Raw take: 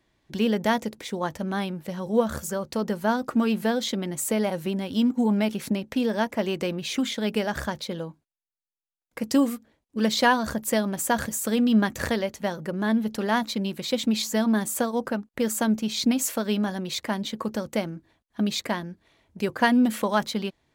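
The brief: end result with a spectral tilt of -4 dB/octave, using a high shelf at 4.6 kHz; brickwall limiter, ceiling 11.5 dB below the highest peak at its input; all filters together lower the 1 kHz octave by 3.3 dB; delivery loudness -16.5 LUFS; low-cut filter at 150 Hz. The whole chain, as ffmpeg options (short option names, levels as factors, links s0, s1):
-af "highpass=150,equalizer=f=1000:t=o:g=-4.5,highshelf=f=4600:g=5.5,volume=4.22,alimiter=limit=0.473:level=0:latency=1"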